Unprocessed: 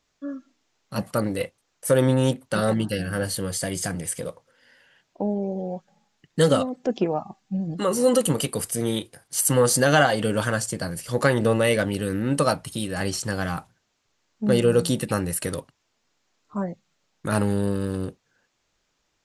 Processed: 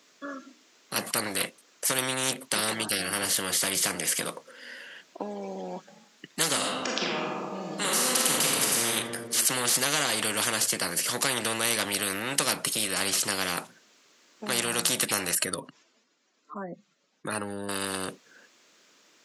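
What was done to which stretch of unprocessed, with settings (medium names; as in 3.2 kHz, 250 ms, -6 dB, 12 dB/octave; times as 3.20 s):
6.57–8.86 s: reverb throw, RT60 1.1 s, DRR -3 dB
15.35–17.69 s: spectral contrast enhancement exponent 1.6
whole clip: high-pass 210 Hz 24 dB/octave; peaking EQ 810 Hz -7 dB 0.45 oct; spectrum-flattening compressor 4:1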